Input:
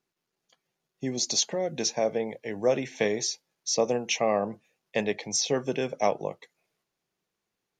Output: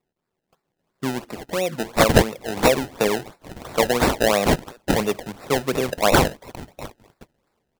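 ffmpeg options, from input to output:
-filter_complex "[0:a]highshelf=f=3.5k:g=9,acrossover=split=2400[a][b];[b]adelay=790[c];[a][c]amix=inputs=2:normalize=0,acrusher=samples=27:mix=1:aa=0.000001:lfo=1:lforange=27:lforate=2.9,volume=5.5dB"

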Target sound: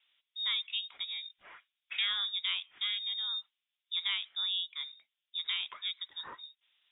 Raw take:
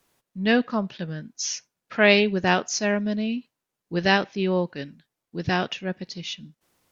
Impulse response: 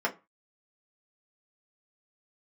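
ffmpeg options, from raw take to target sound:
-filter_complex "[0:a]acrossover=split=230 2200:gain=0.224 1 0.0891[a][b][c];[a][b][c]amix=inputs=3:normalize=0,acompressor=threshold=-34dB:ratio=3,lowpass=f=3.3k:t=q:w=0.5098,lowpass=f=3.3k:t=q:w=0.6013,lowpass=f=3.3k:t=q:w=0.9,lowpass=f=3.3k:t=q:w=2.563,afreqshift=-3900"

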